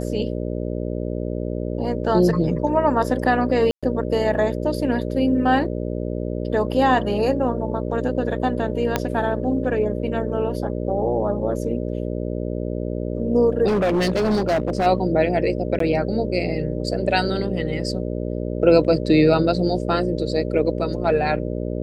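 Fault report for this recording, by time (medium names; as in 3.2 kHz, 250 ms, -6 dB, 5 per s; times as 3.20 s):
buzz 60 Hz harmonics 10 -26 dBFS
3.71–3.83 s: dropout 116 ms
8.96 s: pop -5 dBFS
13.67–14.87 s: clipped -16 dBFS
15.79–15.80 s: dropout 13 ms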